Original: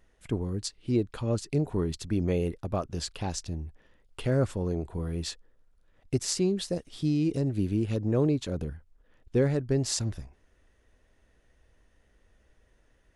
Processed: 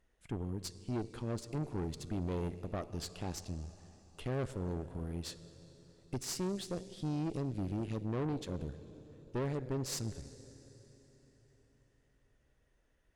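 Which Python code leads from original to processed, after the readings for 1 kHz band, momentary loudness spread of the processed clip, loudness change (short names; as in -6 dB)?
-4.5 dB, 17 LU, -9.5 dB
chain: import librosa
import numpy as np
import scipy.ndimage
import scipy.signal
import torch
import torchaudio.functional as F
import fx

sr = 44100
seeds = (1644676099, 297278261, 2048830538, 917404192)

y = fx.rev_plate(x, sr, seeds[0], rt60_s=4.3, hf_ratio=0.8, predelay_ms=0, drr_db=12.0)
y = fx.tube_stage(y, sr, drive_db=27.0, bias=0.75)
y = y * 10.0 ** (-4.5 / 20.0)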